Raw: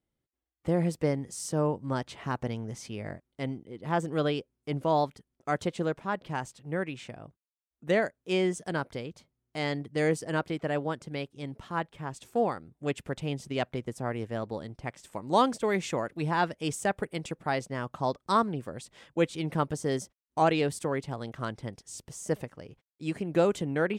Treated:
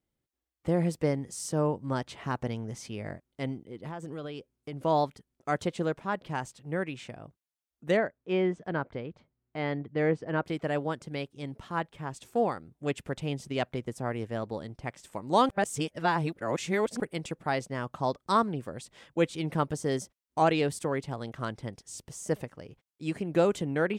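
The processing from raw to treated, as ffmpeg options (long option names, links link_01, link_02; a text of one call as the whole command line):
ffmpeg -i in.wav -filter_complex "[0:a]asettb=1/sr,asplit=3[link_01][link_02][link_03];[link_01]atrim=end=3.694[link_04];[link_02]atrim=start=3.69:end=4.84,asetpts=PTS-STARTPTS,afade=type=in:duration=0.004:curve=qsin,afade=type=out:start_time=1.146:duration=0.004:curve=qsin,acompressor=threshold=-34dB:ratio=10:attack=3.2:release=140:knee=1:detection=peak[link_05];[link_03]atrim=start=4.836[link_06];[link_04][link_05]acrossfade=duration=0.004:curve1=hsin:curve2=qsin[link_07];[link_07][link_06]acrossfade=duration=0.004:curve1=qsin:curve2=hsin,asplit=3[link_08][link_09][link_10];[link_08]afade=type=out:start_time=7.96:duration=0.02[link_11];[link_09]lowpass=2200,afade=type=in:start_time=7.96:duration=0.02,afade=type=out:start_time=10.45:duration=0.02[link_12];[link_10]afade=type=in:start_time=10.45:duration=0.02[link_13];[link_11][link_12][link_13]amix=inputs=3:normalize=0,asplit=3[link_14][link_15][link_16];[link_14]atrim=end=15.492[link_17];[link_15]atrim=start=15.488:end=17.002,asetpts=PTS-STARTPTS,areverse[link_18];[link_16]atrim=start=16.998[link_19];[link_17][link_18]acrossfade=duration=0.004:curve1=hsin:curve2=hsin[link_20];[link_20][link_19]acrossfade=duration=0.004:curve1=hsin:curve2=hsin" out.wav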